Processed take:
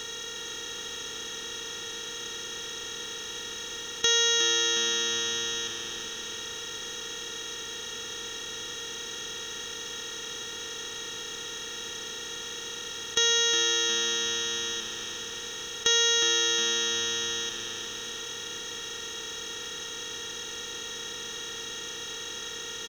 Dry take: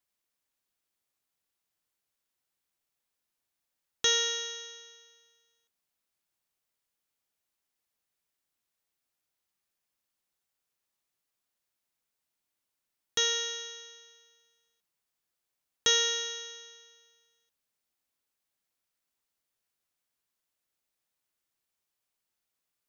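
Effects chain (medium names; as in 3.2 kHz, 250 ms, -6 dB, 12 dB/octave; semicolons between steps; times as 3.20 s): spectral levelling over time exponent 0.2; frequency-shifting echo 361 ms, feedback 45%, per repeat -120 Hz, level -10 dB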